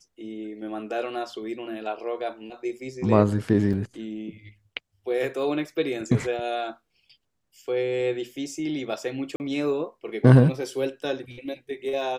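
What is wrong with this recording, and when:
0:03.73–0:03.74: drop-out 5.6 ms
0:09.36–0:09.40: drop-out 39 ms

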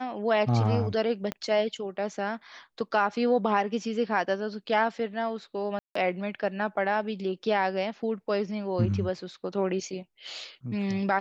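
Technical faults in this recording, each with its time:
0:01.32: click −17 dBFS
0:05.79–0:05.95: drop-out 164 ms

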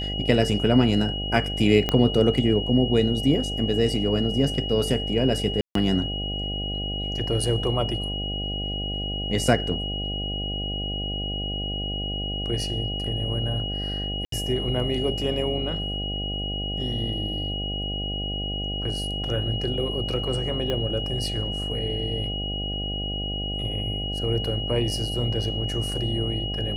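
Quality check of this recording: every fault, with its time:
mains buzz 50 Hz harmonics 16 −31 dBFS
whistle 2,900 Hz −30 dBFS
0:01.89: click −9 dBFS
0:05.61–0:05.75: drop-out 143 ms
0:14.25–0:14.32: drop-out 73 ms
0:20.70: click −15 dBFS

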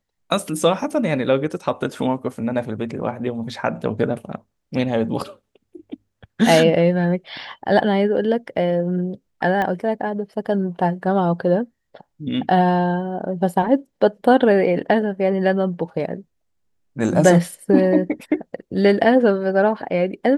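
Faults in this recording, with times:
0:09.62: click −12 dBFS

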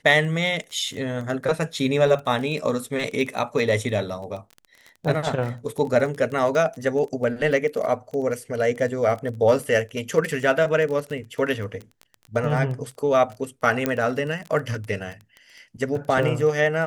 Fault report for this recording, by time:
surface crackle 18 per second −29 dBFS
0:13.86: click −8 dBFS

